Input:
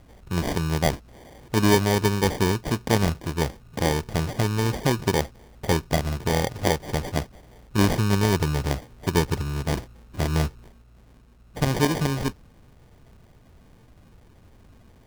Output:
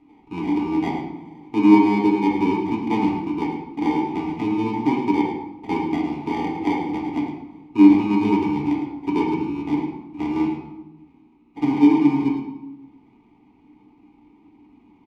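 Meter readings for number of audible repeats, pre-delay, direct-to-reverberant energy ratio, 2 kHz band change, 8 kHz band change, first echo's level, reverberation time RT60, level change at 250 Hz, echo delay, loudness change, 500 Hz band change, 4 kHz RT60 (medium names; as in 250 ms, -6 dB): 1, 3 ms, -3.0 dB, -3.0 dB, under -20 dB, -8.5 dB, 0.95 s, +9.0 dB, 108 ms, +3.5 dB, -1.5 dB, 0.65 s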